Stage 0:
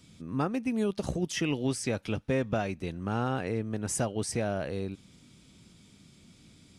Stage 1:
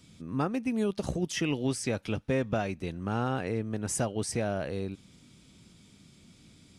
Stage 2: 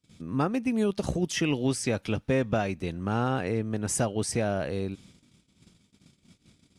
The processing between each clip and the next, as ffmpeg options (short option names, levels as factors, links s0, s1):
-af anull
-af "agate=range=0.0447:threshold=0.002:ratio=16:detection=peak,volume=1.41"